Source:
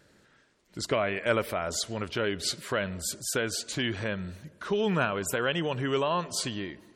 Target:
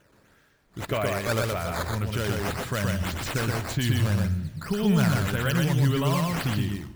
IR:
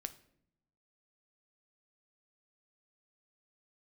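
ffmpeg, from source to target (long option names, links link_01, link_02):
-filter_complex "[0:a]asubboost=boost=8:cutoff=150,acrusher=samples=9:mix=1:aa=0.000001:lfo=1:lforange=14.4:lforate=1.8,asoftclip=type=tanh:threshold=-13dB,asplit=2[link_01][link_02];[1:a]atrim=start_sample=2205,adelay=122[link_03];[link_02][link_03]afir=irnorm=-1:irlink=0,volume=0.5dB[link_04];[link_01][link_04]amix=inputs=2:normalize=0"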